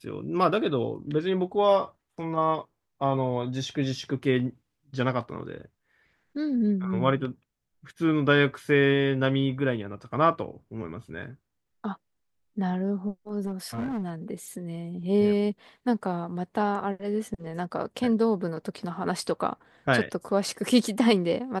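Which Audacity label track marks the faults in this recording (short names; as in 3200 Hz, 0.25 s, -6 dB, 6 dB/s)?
13.460000	14.100000	clipped -27 dBFS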